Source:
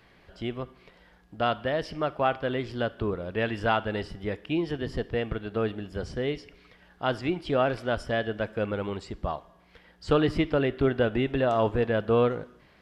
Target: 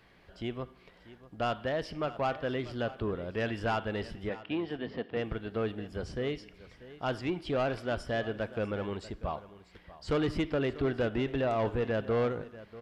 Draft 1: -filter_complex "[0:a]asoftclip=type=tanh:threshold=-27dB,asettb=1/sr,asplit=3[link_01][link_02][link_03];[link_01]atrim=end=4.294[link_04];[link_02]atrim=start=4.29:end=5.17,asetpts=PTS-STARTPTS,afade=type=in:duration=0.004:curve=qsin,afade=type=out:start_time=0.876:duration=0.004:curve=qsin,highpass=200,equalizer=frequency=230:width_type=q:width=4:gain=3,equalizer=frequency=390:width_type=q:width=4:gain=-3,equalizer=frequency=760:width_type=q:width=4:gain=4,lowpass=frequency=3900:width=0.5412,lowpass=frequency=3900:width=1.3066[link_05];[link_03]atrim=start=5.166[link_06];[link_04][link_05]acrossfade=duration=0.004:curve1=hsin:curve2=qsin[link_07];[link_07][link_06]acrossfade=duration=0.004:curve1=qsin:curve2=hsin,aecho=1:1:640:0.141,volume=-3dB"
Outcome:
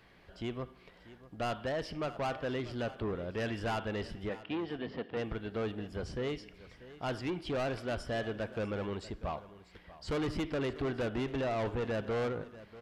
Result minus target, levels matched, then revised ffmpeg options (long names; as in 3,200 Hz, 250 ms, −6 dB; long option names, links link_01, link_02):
soft clipping: distortion +6 dB
-filter_complex "[0:a]asoftclip=type=tanh:threshold=-20dB,asettb=1/sr,asplit=3[link_01][link_02][link_03];[link_01]atrim=end=4.294[link_04];[link_02]atrim=start=4.29:end=5.17,asetpts=PTS-STARTPTS,afade=type=in:duration=0.004:curve=qsin,afade=type=out:start_time=0.876:duration=0.004:curve=qsin,highpass=200,equalizer=frequency=230:width_type=q:width=4:gain=3,equalizer=frequency=390:width_type=q:width=4:gain=-3,equalizer=frequency=760:width_type=q:width=4:gain=4,lowpass=frequency=3900:width=0.5412,lowpass=frequency=3900:width=1.3066[link_05];[link_03]atrim=start=5.166[link_06];[link_04][link_05]acrossfade=duration=0.004:curve1=hsin:curve2=qsin[link_07];[link_07][link_06]acrossfade=duration=0.004:curve1=qsin:curve2=hsin,aecho=1:1:640:0.141,volume=-3dB"